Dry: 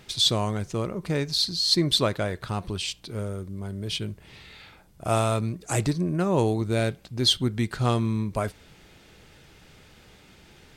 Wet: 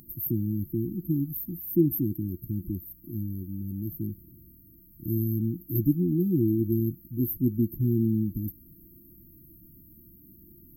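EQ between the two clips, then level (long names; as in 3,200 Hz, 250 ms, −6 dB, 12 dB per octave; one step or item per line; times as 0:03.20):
linear-phase brick-wall band-stop 360–12,000 Hz
bass and treble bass −9 dB, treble +12 dB
+7.5 dB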